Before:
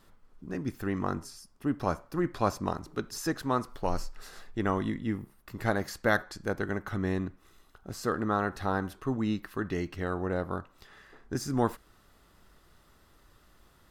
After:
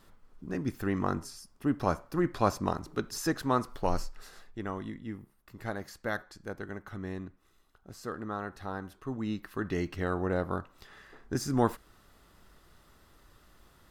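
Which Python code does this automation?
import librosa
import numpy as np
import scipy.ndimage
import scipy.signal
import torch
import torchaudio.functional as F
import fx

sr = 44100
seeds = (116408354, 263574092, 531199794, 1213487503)

y = fx.gain(x, sr, db=fx.line((3.94, 1.0), (4.66, -8.0), (8.85, -8.0), (9.83, 1.0)))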